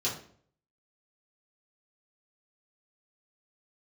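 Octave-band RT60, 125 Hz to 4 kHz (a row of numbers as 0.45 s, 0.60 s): 0.70 s, 0.60 s, 0.60 s, 0.50 s, 0.45 s, 0.40 s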